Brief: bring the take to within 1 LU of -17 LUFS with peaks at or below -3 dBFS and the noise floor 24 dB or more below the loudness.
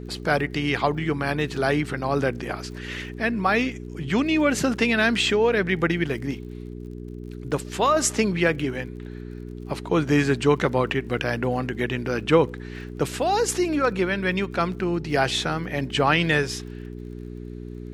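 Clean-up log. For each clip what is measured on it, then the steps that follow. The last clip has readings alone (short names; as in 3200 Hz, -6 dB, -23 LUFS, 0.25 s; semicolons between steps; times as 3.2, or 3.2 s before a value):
ticks 50/s; hum 60 Hz; harmonics up to 420 Hz; hum level -33 dBFS; loudness -23.5 LUFS; peak -6.0 dBFS; loudness target -17.0 LUFS
-> de-click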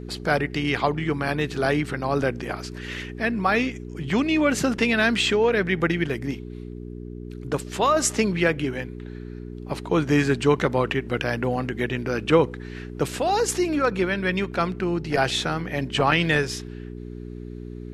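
ticks 0.11/s; hum 60 Hz; harmonics up to 420 Hz; hum level -33 dBFS
-> de-hum 60 Hz, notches 7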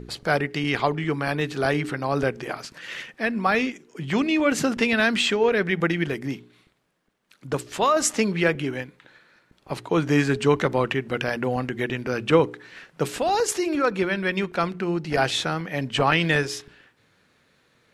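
hum none; loudness -23.5 LUFS; peak -5.5 dBFS; loudness target -17.0 LUFS
-> gain +6.5 dB; limiter -3 dBFS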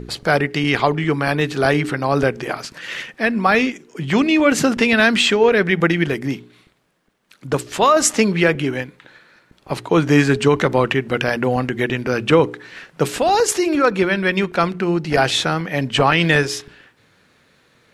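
loudness -17.5 LUFS; peak -3.0 dBFS; noise floor -57 dBFS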